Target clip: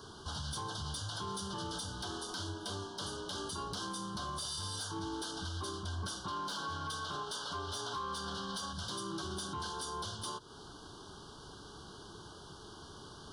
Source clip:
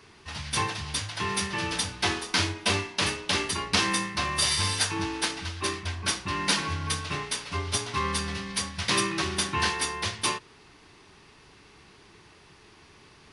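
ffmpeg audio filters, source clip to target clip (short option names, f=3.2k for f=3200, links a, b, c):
-filter_complex "[0:a]asettb=1/sr,asplit=3[a][b][c];[a]atrim=end=6.244[d];[b]atrim=start=6.24:end=8.73,asetpts=PTS-STARTPTS,afade=t=in:d=0.004:c=qsin,afade=t=out:st=2.486:d=0.004:c=qsin,asplit=2[e][f];[f]highpass=f=720:p=1,volume=13dB,asoftclip=type=tanh:threshold=-11.5dB[g];[e][g]amix=inputs=2:normalize=0,lowpass=f=3.4k:p=1,volume=-6dB[h];[c]atrim=start=8.726[i];[d][h]acrossfade=d=0.004:c1=hsin:c2=qsin[j];[j][i]acrossfade=d=0.004:c1=qsin:c2=hsin,acompressor=threshold=-37dB:ratio=4,asuperstop=centerf=2200:order=20:qfactor=1.7,asoftclip=type=tanh:threshold=-27dB,alimiter=level_in=12dB:limit=-24dB:level=0:latency=1:release=46,volume=-12dB,volume=4dB"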